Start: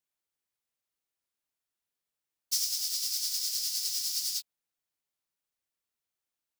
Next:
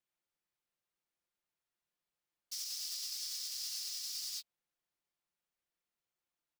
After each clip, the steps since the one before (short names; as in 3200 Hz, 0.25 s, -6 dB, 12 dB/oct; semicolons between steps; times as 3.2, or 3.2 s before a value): high shelf 4900 Hz -9.5 dB; comb 5.7 ms, depth 37%; limiter -31.5 dBFS, peak gain reduction 10 dB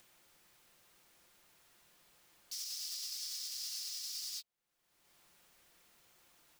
upward compressor, threshold -45 dBFS; gain -1 dB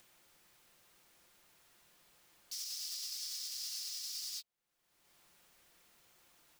nothing audible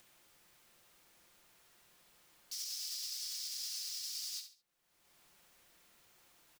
feedback echo 69 ms, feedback 28%, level -9 dB